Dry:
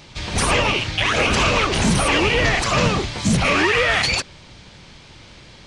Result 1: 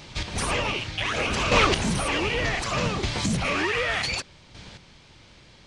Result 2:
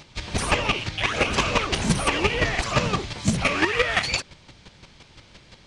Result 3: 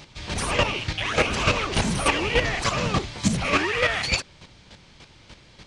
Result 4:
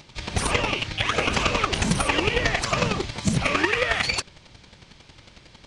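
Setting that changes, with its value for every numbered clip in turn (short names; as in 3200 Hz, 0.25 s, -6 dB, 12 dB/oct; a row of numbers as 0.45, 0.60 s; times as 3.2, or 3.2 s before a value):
chopper, rate: 0.66, 5.8, 3.4, 11 Hz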